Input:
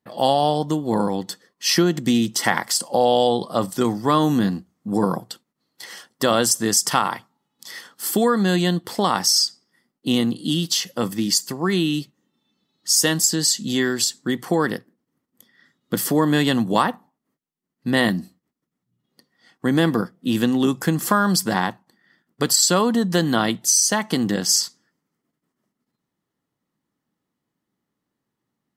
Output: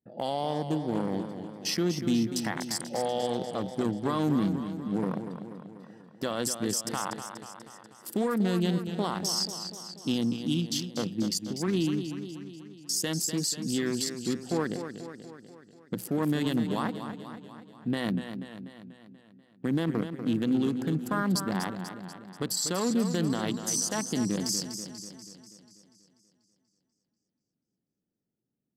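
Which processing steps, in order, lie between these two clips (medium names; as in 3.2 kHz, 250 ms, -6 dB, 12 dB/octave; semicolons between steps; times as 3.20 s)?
local Wiener filter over 41 samples; peak limiter -14 dBFS, peak gain reduction 10.5 dB; modulated delay 243 ms, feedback 58%, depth 79 cents, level -9 dB; trim -5.5 dB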